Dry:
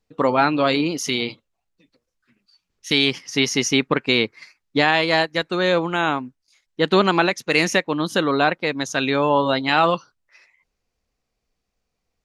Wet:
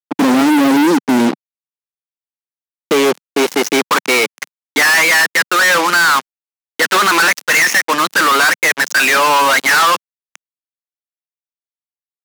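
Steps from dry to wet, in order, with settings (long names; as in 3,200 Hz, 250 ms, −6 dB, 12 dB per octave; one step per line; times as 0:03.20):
band-pass filter sweep 270 Hz → 1,700 Hz, 0:01.83–0:04.75
fuzz pedal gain 49 dB, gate −44 dBFS
high-pass filter 180 Hz 24 dB per octave
level +3.5 dB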